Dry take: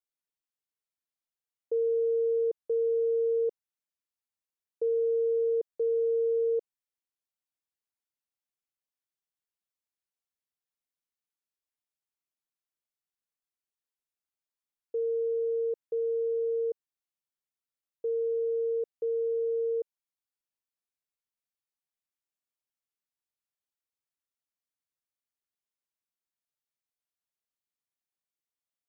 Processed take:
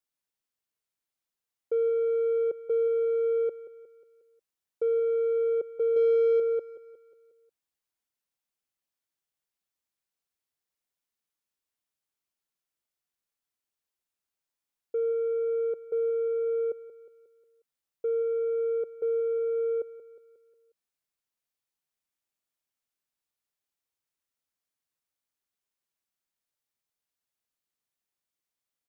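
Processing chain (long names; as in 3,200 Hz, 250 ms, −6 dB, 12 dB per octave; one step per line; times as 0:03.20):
0:05.96–0:06.40: comb filter 2.3 ms, depth 70%
in parallel at −6 dB: soft clipping −31.5 dBFS, distortion −10 dB
on the sum: repeating echo 180 ms, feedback 50%, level −15 dB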